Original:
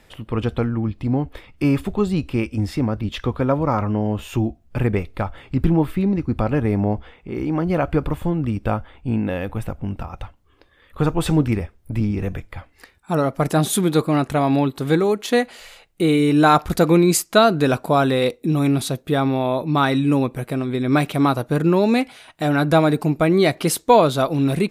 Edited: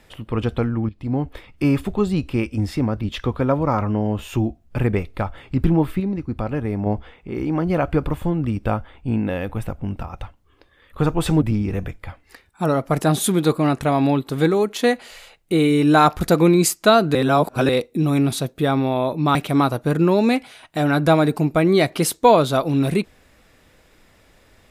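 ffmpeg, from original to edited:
-filter_complex "[0:a]asplit=8[a][b][c][d][e][f][g][h];[a]atrim=end=0.89,asetpts=PTS-STARTPTS,afade=t=out:st=0.886:d=0.004:c=hsin:silence=0.237137[i];[b]atrim=start=0.89:end=6.002,asetpts=PTS-STARTPTS,afade=t=in:d=0.34:silence=0.237137[j];[c]atrim=start=5.998:end=6.862,asetpts=PTS-STARTPTS,volume=-4.5dB[k];[d]atrim=start=6.858:end=11.422[l];[e]atrim=start=11.908:end=17.642[m];[f]atrim=start=17.638:end=18.182,asetpts=PTS-STARTPTS,areverse[n];[g]atrim=start=18.178:end=19.842[o];[h]atrim=start=20.998[p];[i][j]concat=n=2:v=0:a=1[q];[q][k]acrossfade=d=0.004:c1=hsin:c2=hsin[r];[r][l]acrossfade=d=0.004:c1=hsin:c2=hsin[s];[s][m]acrossfade=d=0.004:c1=hsin:c2=hsin[t];[t][n]acrossfade=d=0.004:c1=hsin:c2=hsin[u];[u][o]acrossfade=d=0.004:c1=hsin:c2=hsin[v];[v][p]acrossfade=d=0.004:c1=hsin:c2=hsin"

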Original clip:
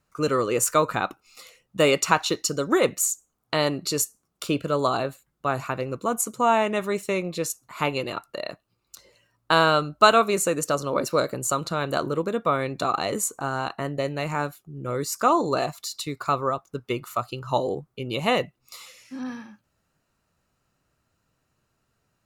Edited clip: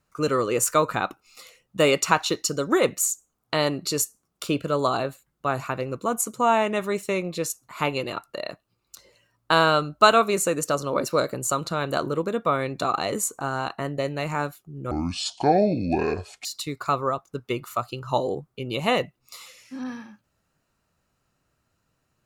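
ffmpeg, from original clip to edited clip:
-filter_complex "[0:a]asplit=3[a][b][c];[a]atrim=end=14.914[d];[b]atrim=start=14.91:end=15.85,asetpts=PTS-STARTPTS,asetrate=26901,aresample=44100,atrim=end_sample=67957,asetpts=PTS-STARTPTS[e];[c]atrim=start=15.846[f];[d][e]acrossfade=d=0.004:c1=hsin:c2=hsin[g];[g][f]acrossfade=d=0.004:c1=hsin:c2=hsin"

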